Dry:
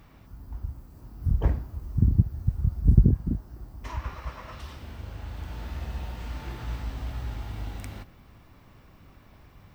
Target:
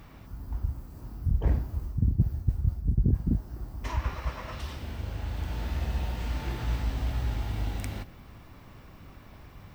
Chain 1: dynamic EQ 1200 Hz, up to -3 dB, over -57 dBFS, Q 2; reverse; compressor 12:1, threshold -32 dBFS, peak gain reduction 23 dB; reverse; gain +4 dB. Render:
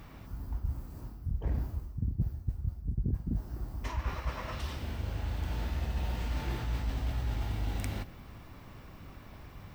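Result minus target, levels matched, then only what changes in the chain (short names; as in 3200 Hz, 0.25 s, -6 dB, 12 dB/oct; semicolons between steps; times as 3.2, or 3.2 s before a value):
compressor: peak gain reduction +8 dB
change: compressor 12:1, threshold -23.5 dBFS, peak gain reduction 15 dB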